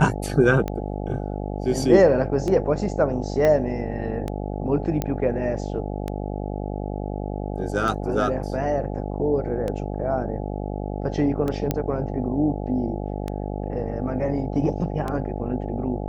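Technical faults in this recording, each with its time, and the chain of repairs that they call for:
mains buzz 50 Hz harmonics 17 −29 dBFS
scratch tick 33 1/3 rpm −15 dBFS
0:03.45: click −10 dBFS
0:05.02: click −11 dBFS
0:11.71: click −9 dBFS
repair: click removal
hum removal 50 Hz, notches 17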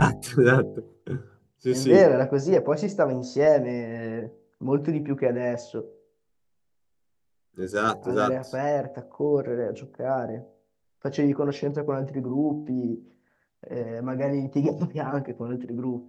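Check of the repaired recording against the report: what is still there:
0:03.45: click

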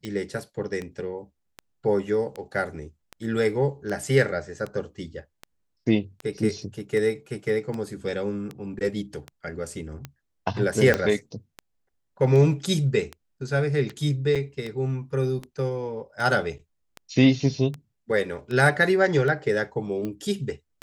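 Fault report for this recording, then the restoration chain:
scratch tick 78 rpm −20 dBFS
0:10.94: click −8 dBFS
0:14.35–0:14.36: drop-out 6.1 ms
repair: click removal
repair the gap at 0:14.35, 6.1 ms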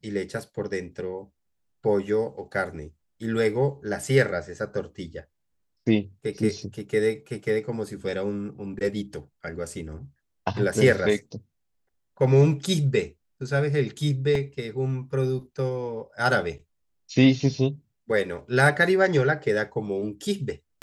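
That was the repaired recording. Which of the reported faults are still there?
0:10.94: click

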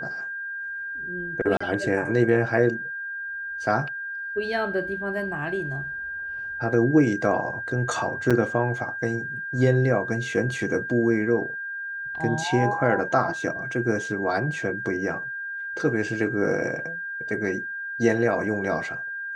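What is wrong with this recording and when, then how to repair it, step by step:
whistle 1,600 Hz −30 dBFS
0:01.57–0:01.60: drop-out 35 ms
0:08.30–0:08.31: drop-out 6.1 ms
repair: notch filter 1,600 Hz, Q 30
repair the gap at 0:01.57, 35 ms
repair the gap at 0:08.30, 6.1 ms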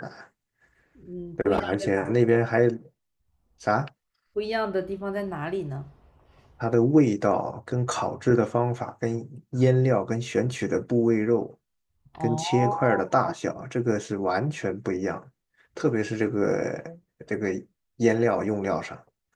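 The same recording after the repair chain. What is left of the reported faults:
none of them is left

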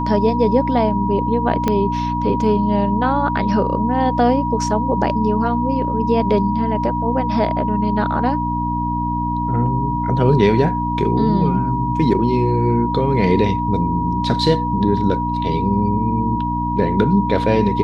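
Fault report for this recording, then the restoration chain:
mains hum 60 Hz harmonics 5 −23 dBFS
whistle 960 Hz −21 dBFS
0:01.68: click −5 dBFS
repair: click removal
hum removal 60 Hz, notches 5
notch filter 960 Hz, Q 30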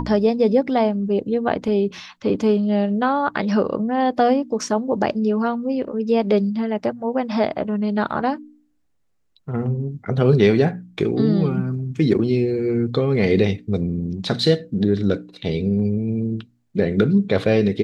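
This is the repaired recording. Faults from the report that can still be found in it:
0:01.68: click

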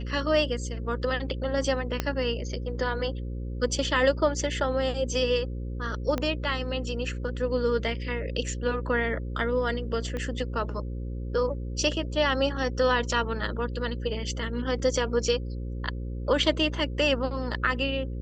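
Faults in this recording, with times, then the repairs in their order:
mains buzz 60 Hz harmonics 9 −33 dBFS
0:02.00: click −11 dBFS
0:06.18: click −15 dBFS
0:10.17: click −21 dBFS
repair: click removal
hum removal 60 Hz, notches 9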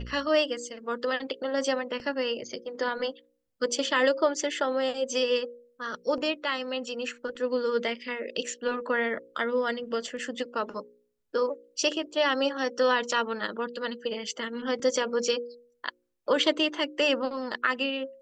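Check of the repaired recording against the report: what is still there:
0:02.00: click
0:06.18: click
0:10.17: click

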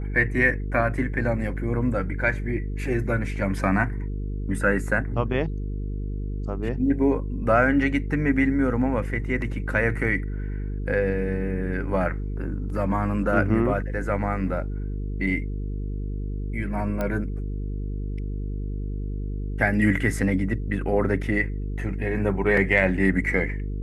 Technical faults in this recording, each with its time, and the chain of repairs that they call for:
mains buzz 50 Hz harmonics 9 −29 dBFS
0:17.01: click −15 dBFS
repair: click removal
hum removal 50 Hz, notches 9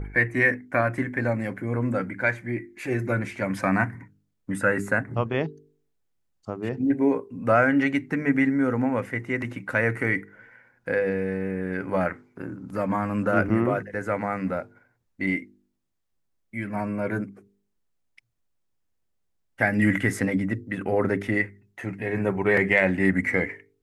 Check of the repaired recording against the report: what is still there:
none of them is left

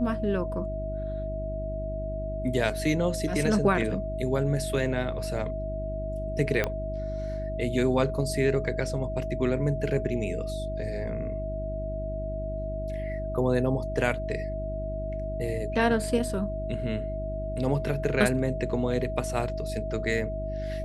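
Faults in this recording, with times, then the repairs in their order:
mains hum 50 Hz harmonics 7 −34 dBFS
whistle 640 Hz −33 dBFS
0:06.64: click −12 dBFS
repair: click removal
hum removal 50 Hz, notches 7
notch filter 640 Hz, Q 30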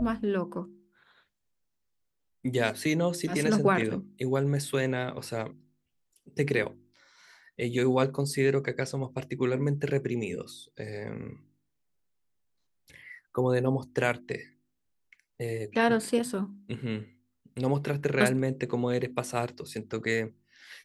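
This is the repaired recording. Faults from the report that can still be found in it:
0:06.64: click

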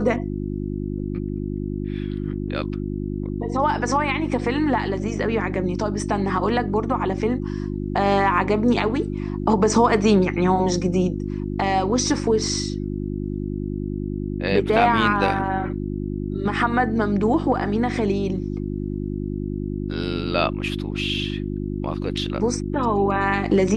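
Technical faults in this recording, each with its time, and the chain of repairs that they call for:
mains hum 50 Hz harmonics 7 −27 dBFS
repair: hum removal 50 Hz, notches 7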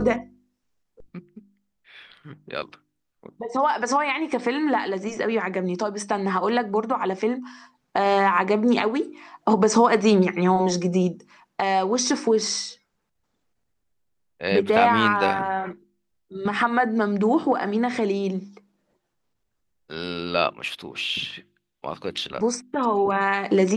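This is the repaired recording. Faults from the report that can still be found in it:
none of them is left

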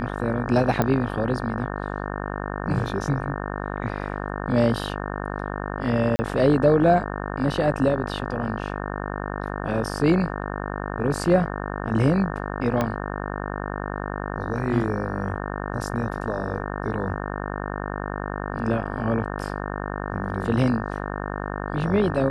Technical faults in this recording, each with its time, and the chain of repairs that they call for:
mains buzz 50 Hz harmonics 36 −30 dBFS
0:00.82: click −9 dBFS
0:06.16–0:06.19: drop-out 30 ms
0:12.81: click −10 dBFS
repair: click removal
hum removal 50 Hz, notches 36
repair the gap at 0:06.16, 30 ms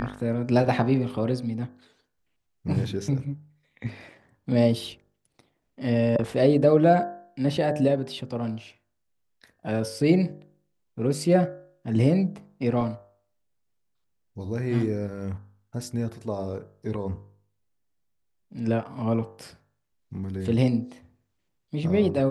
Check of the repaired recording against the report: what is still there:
0:12.81: click

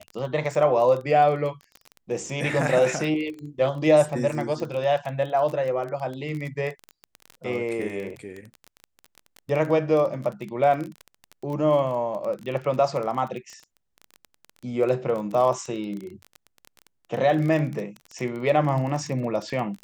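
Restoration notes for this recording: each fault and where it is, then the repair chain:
surface crackle 22 per second −29 dBFS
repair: click removal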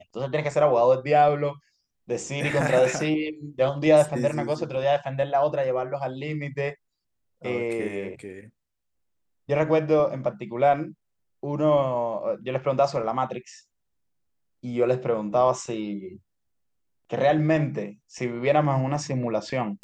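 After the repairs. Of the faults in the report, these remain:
none of them is left

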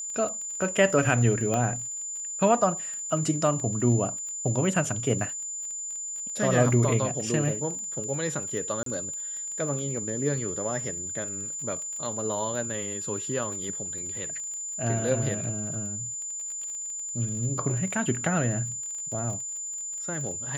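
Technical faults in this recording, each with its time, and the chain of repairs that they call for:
surface crackle 27 per second −35 dBFS
whistle 7,100 Hz −32 dBFS
0:01.54: click −15 dBFS
0:08.83–0:08.86: drop-out 33 ms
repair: click removal
notch filter 7,100 Hz, Q 30
repair the gap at 0:08.83, 33 ms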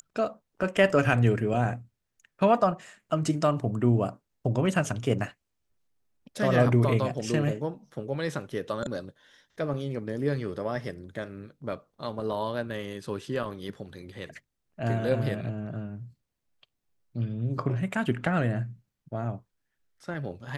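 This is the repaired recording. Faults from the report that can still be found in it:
none of them is left

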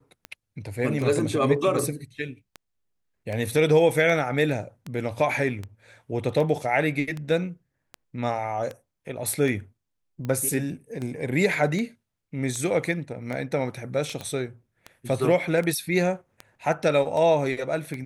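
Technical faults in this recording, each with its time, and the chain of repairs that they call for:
scratch tick 78 rpm −20 dBFS
0:14.21: click −20 dBFS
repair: click removal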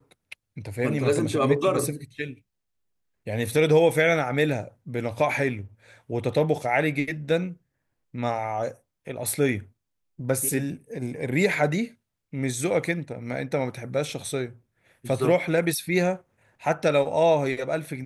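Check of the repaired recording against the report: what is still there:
none of them is left

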